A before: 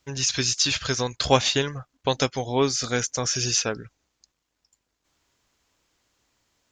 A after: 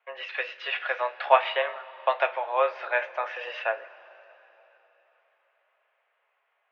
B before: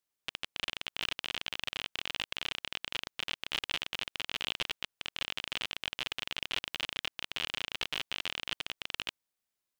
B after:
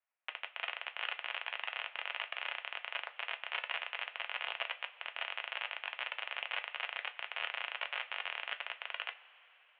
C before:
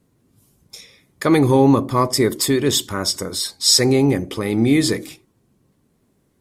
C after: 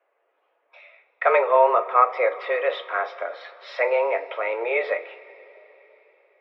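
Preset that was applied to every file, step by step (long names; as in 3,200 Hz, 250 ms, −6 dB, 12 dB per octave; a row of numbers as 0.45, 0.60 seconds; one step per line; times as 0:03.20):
single-sideband voice off tune +120 Hz 460–2,500 Hz
coupled-rooms reverb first 0.21 s, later 4 s, from −22 dB, DRR 7 dB
level +2 dB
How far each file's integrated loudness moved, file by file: −4.0, −3.0, −5.0 LU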